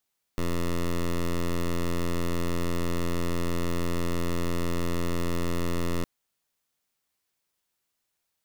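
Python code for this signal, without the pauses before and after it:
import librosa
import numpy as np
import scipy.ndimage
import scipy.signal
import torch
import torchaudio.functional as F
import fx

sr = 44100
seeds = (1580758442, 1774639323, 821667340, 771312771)

y = fx.pulse(sr, length_s=5.66, hz=86.1, level_db=-26.0, duty_pct=11)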